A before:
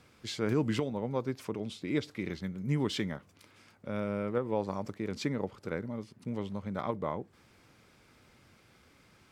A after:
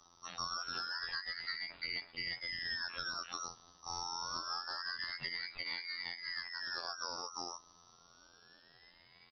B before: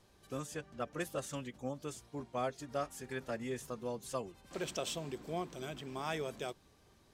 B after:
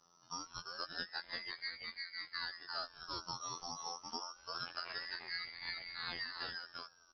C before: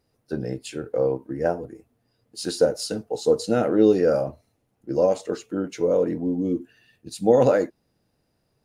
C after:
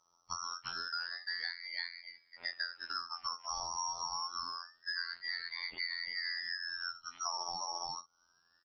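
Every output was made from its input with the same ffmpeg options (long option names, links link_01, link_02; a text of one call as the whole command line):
ffmpeg -i in.wav -filter_complex "[0:a]lowpass=frequency=3100:width_type=q:width=0.5098,lowpass=frequency=3100:width_type=q:width=0.6013,lowpass=frequency=3100:width_type=q:width=0.9,lowpass=frequency=3100:width_type=q:width=2.563,afreqshift=-3700,afftfilt=real='hypot(re,im)*cos(PI*b)':imag='0':win_size=2048:overlap=0.75,bandreject=frequency=50:width_type=h:width=6,bandreject=frequency=100:width_type=h:width=6,asplit=2[link_01][link_02];[link_02]aecho=0:1:345:0.631[link_03];[link_01][link_03]amix=inputs=2:normalize=0,acompressor=threshold=-37dB:ratio=8,aeval=exprs='val(0)*sin(2*PI*1800*n/s+1800*0.3/0.26*sin(2*PI*0.26*n/s))':channel_layout=same,volume=3.5dB" out.wav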